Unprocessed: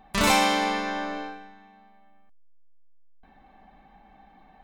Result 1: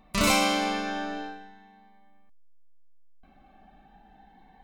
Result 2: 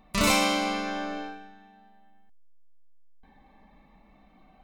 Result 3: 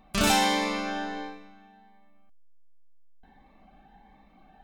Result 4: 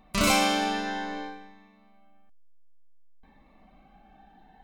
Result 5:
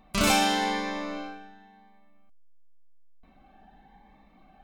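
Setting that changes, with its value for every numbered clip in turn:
Shepard-style phaser, rate: 0.36 Hz, 0.24 Hz, 1.4 Hz, 0.56 Hz, 0.93 Hz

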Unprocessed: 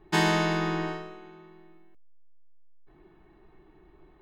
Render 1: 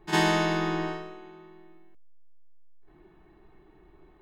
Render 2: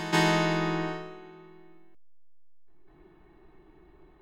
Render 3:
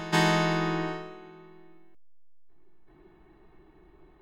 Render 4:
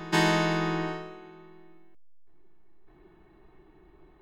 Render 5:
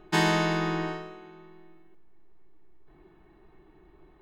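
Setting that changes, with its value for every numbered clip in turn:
reverse echo, time: 51 ms, 199 ms, 383 ms, 606 ms, 1133 ms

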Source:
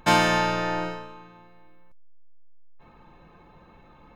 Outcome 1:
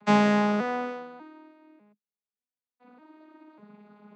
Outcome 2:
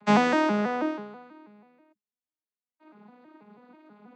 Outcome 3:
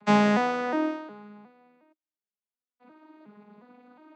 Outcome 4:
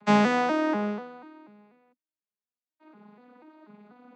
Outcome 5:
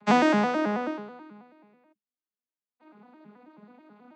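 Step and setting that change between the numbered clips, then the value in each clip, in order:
vocoder on a broken chord, a note every: 596 ms, 162 ms, 361 ms, 244 ms, 108 ms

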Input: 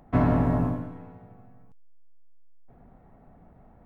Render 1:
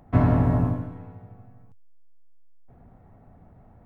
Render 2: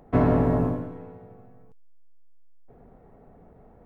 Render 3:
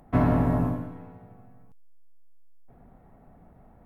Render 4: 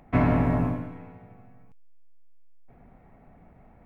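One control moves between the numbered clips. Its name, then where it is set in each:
peaking EQ, frequency: 98 Hz, 440 Hz, 12 kHz, 2.3 kHz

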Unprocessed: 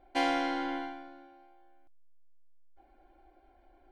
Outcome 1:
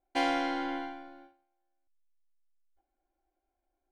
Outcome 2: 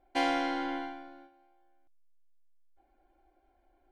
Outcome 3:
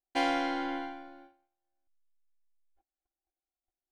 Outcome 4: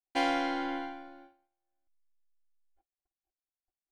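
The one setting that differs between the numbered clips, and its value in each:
gate, range: -21 dB, -7 dB, -39 dB, -51 dB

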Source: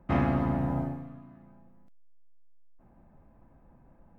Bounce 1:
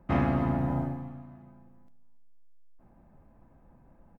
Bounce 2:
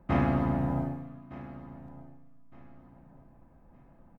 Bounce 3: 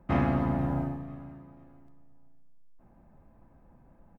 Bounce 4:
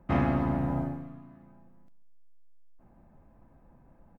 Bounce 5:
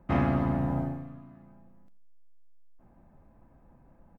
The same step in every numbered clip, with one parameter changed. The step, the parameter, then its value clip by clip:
feedback delay, time: 282 ms, 1213 ms, 490 ms, 140 ms, 86 ms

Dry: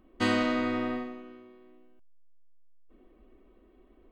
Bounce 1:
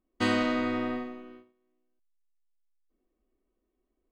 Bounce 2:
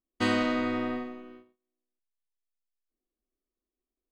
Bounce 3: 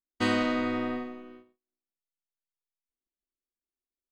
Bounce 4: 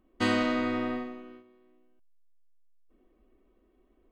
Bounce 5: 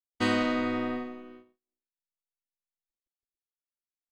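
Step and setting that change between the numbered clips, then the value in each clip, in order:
gate, range: -20 dB, -33 dB, -45 dB, -7 dB, -59 dB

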